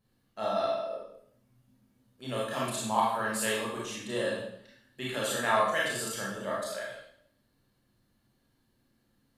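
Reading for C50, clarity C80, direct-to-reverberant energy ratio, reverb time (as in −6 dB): 0.5 dB, 4.5 dB, −5.5 dB, 0.65 s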